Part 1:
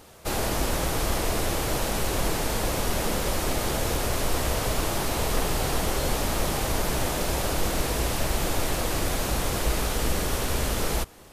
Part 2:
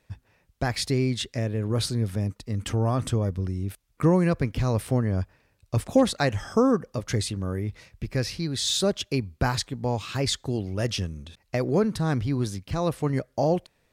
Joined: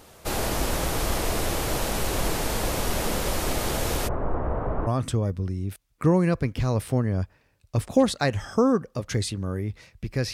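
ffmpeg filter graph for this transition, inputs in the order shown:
-filter_complex "[0:a]asplit=3[a][b][c];[a]afade=t=out:st=4.07:d=0.02[d];[b]lowpass=f=1.3k:w=0.5412,lowpass=f=1.3k:w=1.3066,afade=t=in:st=4.07:d=0.02,afade=t=out:st=4.87:d=0.02[e];[c]afade=t=in:st=4.87:d=0.02[f];[d][e][f]amix=inputs=3:normalize=0,apad=whole_dur=10.33,atrim=end=10.33,atrim=end=4.872[g];[1:a]atrim=start=2.858:end=8.32[h];[g][h]acrossfade=d=0.004:c1=hsin:c2=hsin"

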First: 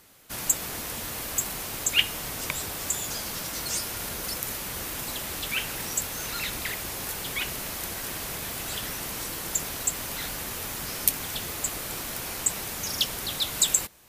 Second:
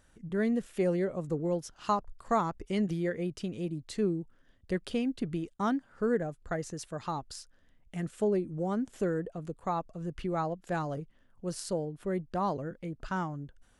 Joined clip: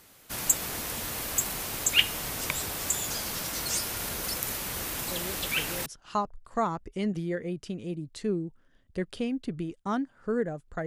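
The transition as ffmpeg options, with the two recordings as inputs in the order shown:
-filter_complex "[1:a]asplit=2[a][b];[0:a]apad=whole_dur=10.86,atrim=end=10.86,atrim=end=5.862[c];[b]atrim=start=1.598:end=6.6[d];[a]atrim=start=0.85:end=1.6,asetpts=PTS-STARTPTS,volume=-10.5dB,afade=t=in:d=0.004:c=hsin,afade=t=out:st=0.746:d=0.004:c=hsin,adelay=5110[e];[c][d]acrossfade=d=0.004:c1=hsin:c2=hsin[f];[f][e]amix=inputs=2:normalize=0"

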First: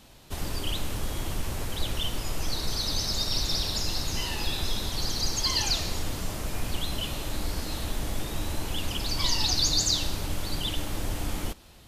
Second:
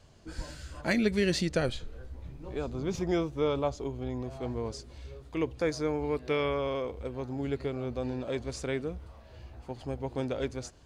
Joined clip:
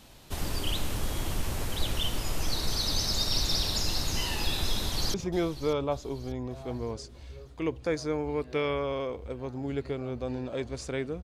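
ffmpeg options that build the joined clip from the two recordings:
-filter_complex "[0:a]apad=whole_dur=11.23,atrim=end=11.23,atrim=end=5.142[a];[1:a]atrim=start=2.888:end=8.98[b];[a][b]acrossfade=d=0.004:c1=hsin:c2=hsin,asplit=2[c][d];[d]afade=t=in:st=4.73:d=0.01,afade=t=out:st=5.14:d=0.01,aecho=0:1:590|1180|1770|2360:0.16788|0.0755462|0.0339958|0.0152981[e];[c][e]amix=inputs=2:normalize=0"

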